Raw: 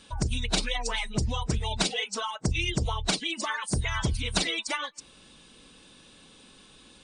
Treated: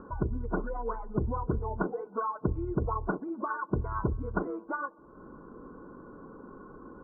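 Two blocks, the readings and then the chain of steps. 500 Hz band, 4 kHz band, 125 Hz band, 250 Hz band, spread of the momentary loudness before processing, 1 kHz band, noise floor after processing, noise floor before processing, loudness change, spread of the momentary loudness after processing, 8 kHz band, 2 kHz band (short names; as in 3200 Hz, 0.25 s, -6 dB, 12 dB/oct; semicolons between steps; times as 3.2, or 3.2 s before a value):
+2.0 dB, under -40 dB, -3.0 dB, +0.5 dB, 4 LU, +0.5 dB, -53 dBFS, -55 dBFS, -4.5 dB, 17 LU, under -40 dB, -9.0 dB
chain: upward compressor, threshold -34 dBFS; rippled Chebyshev low-pass 1500 Hz, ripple 9 dB; band-limited delay 63 ms, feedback 79%, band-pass 430 Hz, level -22.5 dB; gain +5 dB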